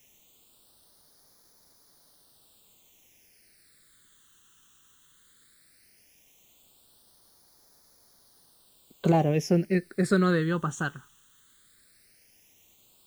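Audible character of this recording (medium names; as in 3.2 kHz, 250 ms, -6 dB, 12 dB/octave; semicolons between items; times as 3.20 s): a quantiser's noise floor 10-bit, dither triangular; phasing stages 8, 0.16 Hz, lowest notch 660–2700 Hz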